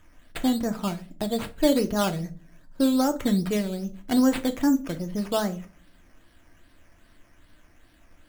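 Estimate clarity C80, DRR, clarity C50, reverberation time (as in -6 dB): 23.5 dB, 6.0 dB, 17.0 dB, 0.40 s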